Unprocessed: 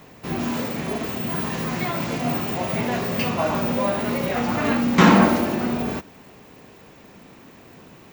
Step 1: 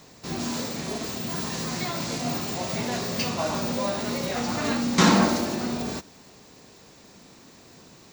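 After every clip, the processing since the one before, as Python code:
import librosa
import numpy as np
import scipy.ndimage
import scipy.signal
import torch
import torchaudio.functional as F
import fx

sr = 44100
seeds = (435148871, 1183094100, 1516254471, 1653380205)

y = fx.band_shelf(x, sr, hz=6300.0, db=11.5, octaves=1.7)
y = y * librosa.db_to_amplitude(-5.0)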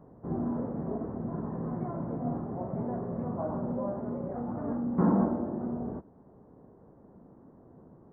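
y = fx.rider(x, sr, range_db=5, speed_s=2.0)
y = scipy.ndimage.gaussian_filter1d(y, 9.1, mode='constant')
y = y * librosa.db_to_amplitude(-4.0)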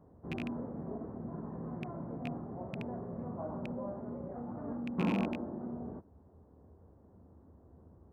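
y = fx.rattle_buzz(x, sr, strikes_db=-29.0, level_db=-22.0)
y = fx.dmg_noise_band(y, sr, seeds[0], low_hz=63.0, high_hz=100.0, level_db=-55.0)
y = y * librosa.db_to_amplitude(-7.0)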